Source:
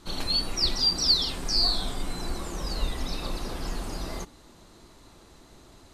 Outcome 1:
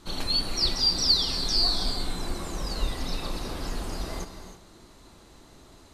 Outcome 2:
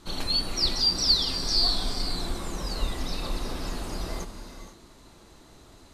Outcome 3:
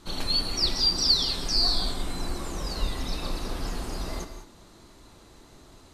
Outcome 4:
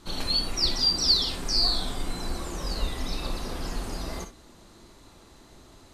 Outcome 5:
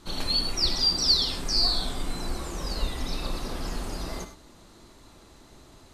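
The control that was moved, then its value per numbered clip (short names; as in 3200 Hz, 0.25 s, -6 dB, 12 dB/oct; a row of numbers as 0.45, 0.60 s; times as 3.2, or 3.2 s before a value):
non-linear reverb, gate: 350, 520, 220, 80, 120 ms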